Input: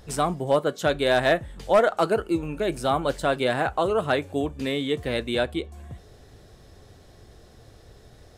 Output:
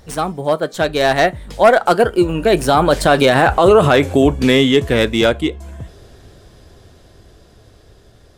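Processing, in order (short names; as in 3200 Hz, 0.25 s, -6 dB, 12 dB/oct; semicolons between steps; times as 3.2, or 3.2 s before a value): tracing distortion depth 0.034 ms; Doppler pass-by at 3.69, 20 m/s, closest 11 m; maximiser +21.5 dB; gain -1 dB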